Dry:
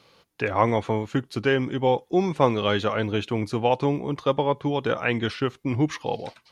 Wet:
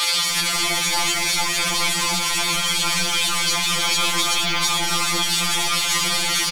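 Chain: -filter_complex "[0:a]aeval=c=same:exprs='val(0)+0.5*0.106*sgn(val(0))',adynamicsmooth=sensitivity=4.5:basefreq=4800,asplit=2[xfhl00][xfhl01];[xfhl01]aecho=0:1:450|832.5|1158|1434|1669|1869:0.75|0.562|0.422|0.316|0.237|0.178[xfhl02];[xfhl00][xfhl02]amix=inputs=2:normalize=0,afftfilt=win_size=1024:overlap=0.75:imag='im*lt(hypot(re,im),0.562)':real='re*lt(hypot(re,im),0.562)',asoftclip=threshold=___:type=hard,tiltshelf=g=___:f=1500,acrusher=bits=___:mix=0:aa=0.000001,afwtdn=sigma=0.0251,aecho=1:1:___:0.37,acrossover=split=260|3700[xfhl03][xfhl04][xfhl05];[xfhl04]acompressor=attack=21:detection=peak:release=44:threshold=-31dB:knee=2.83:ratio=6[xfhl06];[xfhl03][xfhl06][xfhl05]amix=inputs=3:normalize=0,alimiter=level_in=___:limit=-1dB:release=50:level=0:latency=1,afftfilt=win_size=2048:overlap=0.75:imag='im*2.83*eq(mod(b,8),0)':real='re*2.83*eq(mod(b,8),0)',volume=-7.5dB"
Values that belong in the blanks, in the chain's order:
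-20.5dB, -8.5, 4, 6.7, 17.5dB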